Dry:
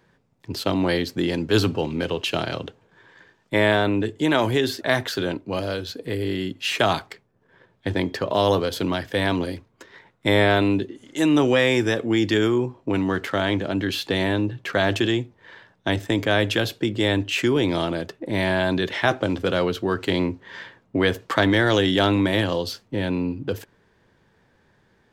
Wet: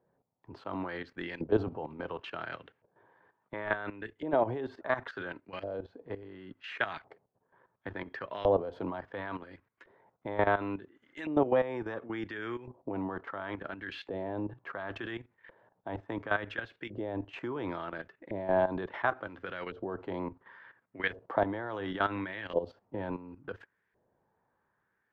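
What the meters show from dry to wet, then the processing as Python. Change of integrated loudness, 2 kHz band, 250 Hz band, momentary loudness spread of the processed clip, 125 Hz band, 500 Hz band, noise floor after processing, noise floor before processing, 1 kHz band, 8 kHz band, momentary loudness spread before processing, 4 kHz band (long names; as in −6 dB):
−12.5 dB, −12.0 dB, −15.5 dB, 15 LU, −17.5 dB, −10.5 dB, −79 dBFS, −63 dBFS, −8.5 dB, below −35 dB, 10 LU, −23.0 dB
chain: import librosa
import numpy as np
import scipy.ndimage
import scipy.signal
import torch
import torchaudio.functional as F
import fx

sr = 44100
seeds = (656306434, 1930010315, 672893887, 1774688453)

y = fx.filter_lfo_bandpass(x, sr, shape='saw_up', hz=0.71, low_hz=600.0, high_hz=2100.0, q=2.0)
y = fx.level_steps(y, sr, step_db=13)
y = fx.riaa(y, sr, side='playback')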